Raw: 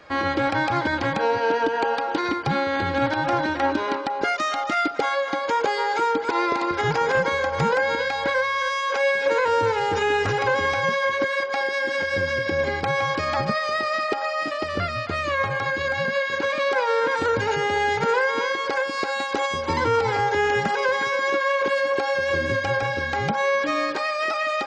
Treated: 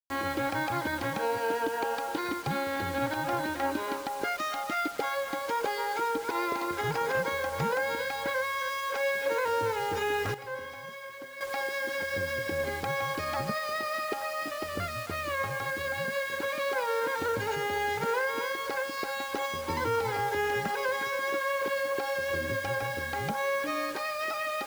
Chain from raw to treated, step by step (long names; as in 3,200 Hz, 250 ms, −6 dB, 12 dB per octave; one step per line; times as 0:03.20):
bit reduction 6 bits
0:10.34–0:11.41: tuned comb filter 130 Hz, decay 0.84 s, harmonics all, mix 80%
level −8 dB